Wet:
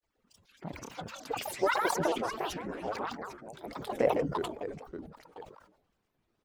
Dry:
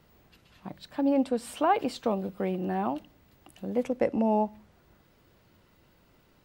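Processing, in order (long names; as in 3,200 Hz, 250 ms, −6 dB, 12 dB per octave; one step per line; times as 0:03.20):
harmonic-percussive split with one part muted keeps percussive
noise reduction from a noise print of the clip's start 13 dB
reverse bouncing-ball delay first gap 150 ms, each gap 1.3×, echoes 5
granular cloud, spray 11 ms, pitch spread up and down by 12 semitones
level that may fall only so fast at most 78 dB per second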